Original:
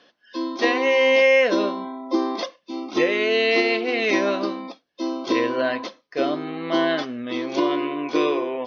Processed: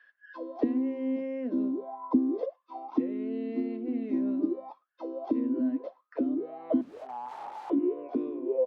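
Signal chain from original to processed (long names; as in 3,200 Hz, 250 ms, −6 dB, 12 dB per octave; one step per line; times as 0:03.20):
slap from a distant wall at 18 metres, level −29 dB
0:06.81–0:07.70: wrap-around overflow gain 25.5 dB
envelope filter 250–1,700 Hz, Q 14, down, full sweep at −19 dBFS
level +7 dB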